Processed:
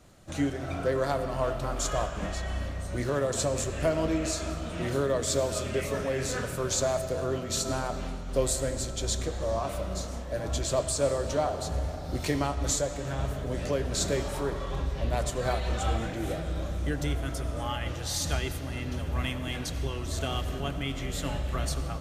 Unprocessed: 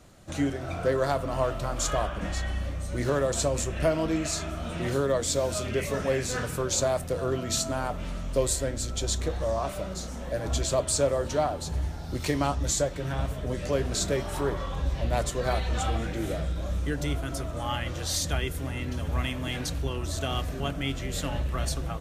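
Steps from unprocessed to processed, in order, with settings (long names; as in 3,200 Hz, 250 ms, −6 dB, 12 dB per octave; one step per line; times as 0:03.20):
on a send at −9 dB: convolution reverb RT60 4.5 s, pre-delay 45 ms
on the sum: amplitude modulation by smooth noise, depth 50%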